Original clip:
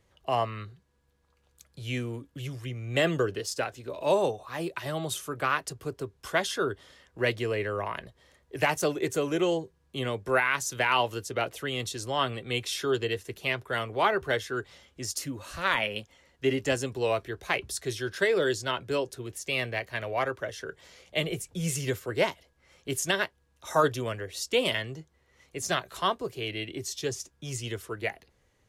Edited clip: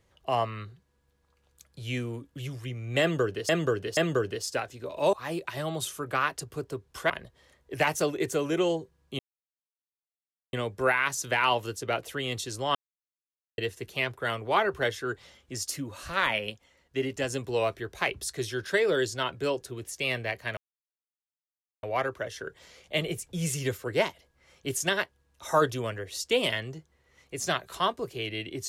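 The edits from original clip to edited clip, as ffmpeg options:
-filter_complex "[0:a]asplit=11[s0][s1][s2][s3][s4][s5][s6][s7][s8][s9][s10];[s0]atrim=end=3.492[s11];[s1]atrim=start=3.008:end=3.492[s12];[s2]atrim=start=3.008:end=4.172[s13];[s3]atrim=start=4.418:end=6.392[s14];[s4]atrim=start=7.918:end=10.01,asetpts=PTS-STARTPTS,afade=t=out:st=2.088:d=0.004:c=hsin,apad=pad_dur=1.34[s15];[s5]atrim=start=10.01:end=12.23,asetpts=PTS-STARTPTS,afade=t=in:d=0.004:c=hsin,afade=t=out:st=2.216:d=0.004:c=hsin[s16];[s6]atrim=start=12.23:end=13.06,asetpts=PTS-STARTPTS,volume=0[s17];[s7]atrim=start=13.06:end=15.982,asetpts=PTS-STARTPTS,afade=t=in:d=0.004:c=hsin[s18];[s8]atrim=start=15.978:end=16.782,asetpts=PTS-STARTPTS,volume=0.668[s19];[s9]atrim=start=16.778:end=20.05,asetpts=PTS-STARTPTS,afade=t=out:st=3.268:d=0.004:c=hsin,apad=pad_dur=1.26[s20];[s10]atrim=start=20.05,asetpts=PTS-STARTPTS,afade=t=in:d=0.004:c=hsin[s21];[s11][s12]acrossfade=d=0.004:c1=hsin:c2=hsin[s22];[s22][s13]acrossfade=d=0.004:c1=hsin:c2=hsin[s23];[s23][s14]acrossfade=d=0.004:c1=hsin:c2=hsin[s24];[s15][s16][s17][s18]concat=n=4:v=0:a=1[s25];[s24][s25]acrossfade=d=0.004:c1=hsin:c2=hsin[s26];[s26][s19]acrossfade=d=0.004:c1=hsin:c2=hsin[s27];[s20][s21]concat=n=2:v=0:a=1[s28];[s27][s28]acrossfade=d=0.004:c1=hsin:c2=hsin"

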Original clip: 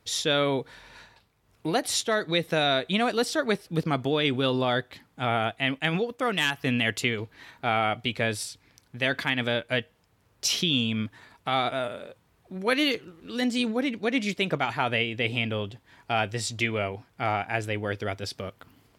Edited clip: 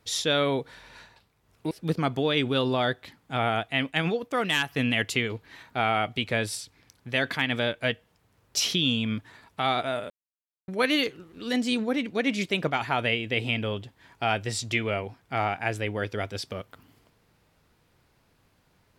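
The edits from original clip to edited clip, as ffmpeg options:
-filter_complex "[0:a]asplit=4[s0][s1][s2][s3];[s0]atrim=end=1.712[s4];[s1]atrim=start=3.588:end=11.98,asetpts=PTS-STARTPTS,afade=t=out:st=8.388:d=0.004:c=hsin[s5];[s2]atrim=start=11.98:end=12.56,asetpts=PTS-STARTPTS,volume=0[s6];[s3]atrim=start=12.56,asetpts=PTS-STARTPTS,afade=t=in:d=0.004:c=hsin[s7];[s5][s6][s7]concat=n=3:v=0:a=1[s8];[s4][s8]acrossfade=d=0.004:c1=hsin:c2=hsin"

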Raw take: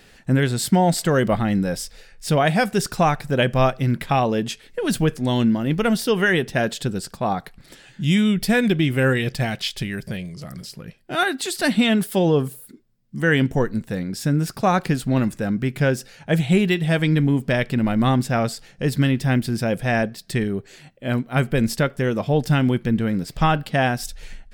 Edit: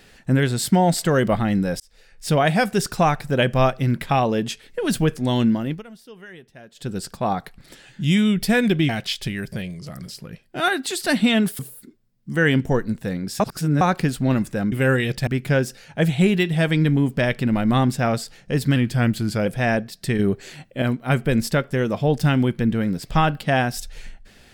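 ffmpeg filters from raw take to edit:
-filter_complex "[0:a]asplit=14[s0][s1][s2][s3][s4][s5][s6][s7][s8][s9][s10][s11][s12][s13];[s0]atrim=end=1.8,asetpts=PTS-STARTPTS,afade=t=out:st=1.796:d=0.004:c=hsin[s14];[s1]atrim=start=1.8:end=5.83,asetpts=PTS-STARTPTS,afade=t=in:d=0.47,afade=t=out:st=3.68:d=0.35:c=qsin:silence=0.0707946[s15];[s2]atrim=start=5.83:end=6.74,asetpts=PTS-STARTPTS,volume=0.0708[s16];[s3]atrim=start=6.74:end=8.892,asetpts=PTS-STARTPTS,afade=t=in:d=0.35:c=qsin:silence=0.0707946[s17];[s4]atrim=start=9.438:end=12.142[s18];[s5]atrim=start=12.448:end=14.262[s19];[s6]atrim=start=14.258:end=14.672,asetpts=PTS-STARTPTS,areverse[s20];[s7]atrim=start=14.668:end=15.582[s21];[s8]atrim=start=8.888:end=9.442[s22];[s9]atrim=start=15.578:end=19.074[s23];[s10]atrim=start=19.07:end=19.72,asetpts=PTS-STARTPTS,asetrate=41013,aresample=44100[s24];[s11]atrim=start=19.716:end=20.452[s25];[s12]atrim=start=20.448:end=21.082,asetpts=PTS-STARTPTS,volume=1.88[s26];[s13]atrim=start=21.078[s27];[s14][s15][s16][s17]concat=n=4:v=0:a=1[s28];[s28][s18]acrossfade=d=0.004:c1=hsin:c2=hsin[s29];[s29][s19]acrossfade=d=0.004:c1=hsin:c2=hsin[s30];[s30][s20]acrossfade=d=0.004:c1=hsin:c2=hsin[s31];[s31][s21]acrossfade=d=0.004:c1=hsin:c2=hsin[s32];[s32][s22]acrossfade=d=0.004:c1=hsin:c2=hsin[s33];[s33][s23]acrossfade=d=0.004:c1=hsin:c2=hsin[s34];[s34][s24]acrossfade=d=0.004:c1=hsin:c2=hsin[s35];[s35][s25]acrossfade=d=0.004:c1=hsin:c2=hsin[s36];[s36][s26]acrossfade=d=0.004:c1=hsin:c2=hsin[s37];[s37][s27]acrossfade=d=0.004:c1=hsin:c2=hsin"

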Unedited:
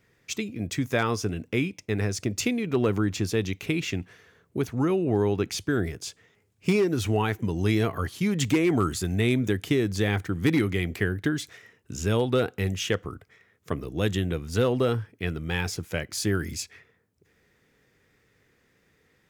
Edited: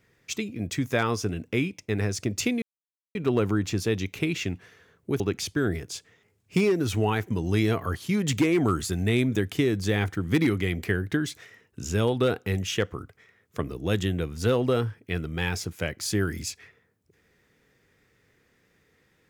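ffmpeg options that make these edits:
-filter_complex "[0:a]asplit=3[s0][s1][s2];[s0]atrim=end=2.62,asetpts=PTS-STARTPTS,afade=t=out:st=2.616:d=0.004:c=hsin,apad=pad_dur=0.53[s3];[s1]atrim=start=2.62:end=4.672,asetpts=PTS-STARTPTS,afade=t=in:d=0.004:c=hsin[s4];[s2]atrim=start=5.318[s5];[s3][s4]concat=n=2:v=0:a=1[s6];[s6][s5]acrossfade=d=0.004:c1=hsin:c2=hsin"

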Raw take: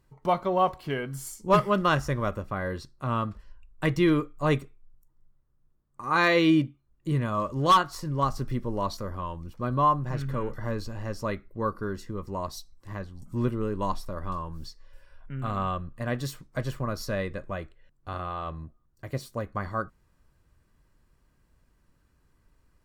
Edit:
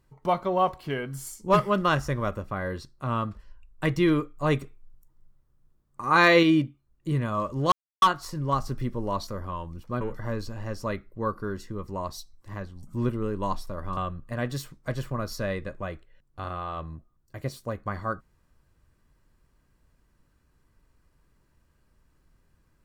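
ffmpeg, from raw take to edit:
-filter_complex "[0:a]asplit=6[s0][s1][s2][s3][s4][s5];[s0]atrim=end=4.612[s6];[s1]atrim=start=4.608:end=6.432,asetpts=PTS-STARTPTS,volume=1.58[s7];[s2]atrim=start=6.428:end=7.72,asetpts=PTS-STARTPTS,afade=t=out:st=1.288:d=0.004:c=hsin,apad=pad_dur=0.3[s8];[s3]atrim=start=7.72:end=9.712,asetpts=PTS-STARTPTS,afade=t=in:d=0.004:c=hsin[s9];[s4]atrim=start=10.398:end=14.362[s10];[s5]atrim=start=15.658[s11];[s6][s7]acrossfade=d=0.004:c1=hsin:c2=hsin[s12];[s8][s9]concat=n=2:v=0:a=1[s13];[s12][s13]acrossfade=d=0.004:c1=hsin:c2=hsin[s14];[s14][s10]acrossfade=d=0.004:c1=hsin:c2=hsin[s15];[s15][s11]acrossfade=d=0.004:c1=hsin:c2=hsin"

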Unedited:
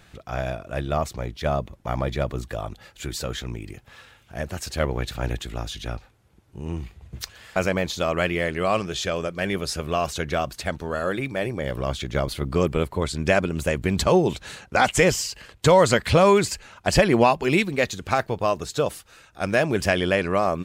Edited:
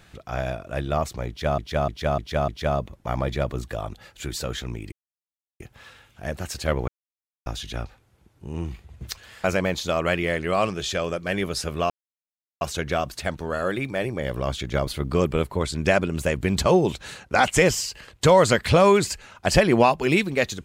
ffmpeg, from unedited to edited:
-filter_complex "[0:a]asplit=9[s0][s1][s2][s3][s4][s5][s6][s7][s8];[s0]atrim=end=1.582[s9];[s1]atrim=start=1.278:end=1.582[s10];[s2]atrim=start=1.278:end=1.582[s11];[s3]atrim=start=1.278:end=1.582[s12];[s4]atrim=start=1.278:end=3.72,asetpts=PTS-STARTPTS,afade=t=out:st=2.438:d=0.004:c=hsin,apad=pad_dur=0.68[s13];[s5]atrim=start=3.72:end=5,asetpts=PTS-STARTPTS,afade=t=in:d=0.004:c=hsin,afade=t=out:st=1.276:d=0.004:c=hsin[s14];[s6]atrim=start=5:end=5.58,asetpts=PTS-STARTPTS,volume=0[s15];[s7]atrim=start=5.58:end=10.02,asetpts=PTS-STARTPTS,afade=t=in:d=0.004:c=hsin,afade=t=out:st=4.436:d=0.004:c=hsin,apad=pad_dur=0.71[s16];[s8]atrim=start=10.02,asetpts=PTS-STARTPTS,afade=t=in:d=0.004:c=hsin[s17];[s9][s10]acrossfade=d=0.004:c1=hsin:c2=hsin[s18];[s18][s11]acrossfade=d=0.004:c1=hsin:c2=hsin[s19];[s19][s12]acrossfade=d=0.004:c1=hsin:c2=hsin[s20];[s13][s14][s15][s16][s17]concat=n=5:v=0:a=1[s21];[s20][s21]acrossfade=d=0.004:c1=hsin:c2=hsin"

